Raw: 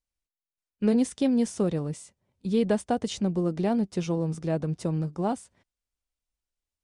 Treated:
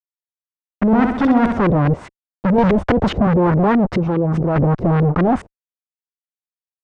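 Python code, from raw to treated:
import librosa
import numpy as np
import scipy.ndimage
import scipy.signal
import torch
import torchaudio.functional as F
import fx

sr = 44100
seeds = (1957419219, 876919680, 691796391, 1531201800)

y = fx.low_shelf(x, sr, hz=72.0, db=10.0)
y = fx.level_steps(y, sr, step_db=22, at=(3.97, 4.56))
y = fx.fuzz(y, sr, gain_db=45.0, gate_db=-52.0)
y = fx.filter_lfo_lowpass(y, sr, shape='saw_up', hz=4.8, low_hz=350.0, high_hz=2000.0, q=1.6)
y = fx.room_flutter(y, sr, wall_m=11.1, rt60_s=0.71, at=(0.91, 1.57), fade=0.02)
y = fx.band_squash(y, sr, depth_pct=100, at=(2.58, 3.27))
y = y * librosa.db_to_amplitude(-1.0)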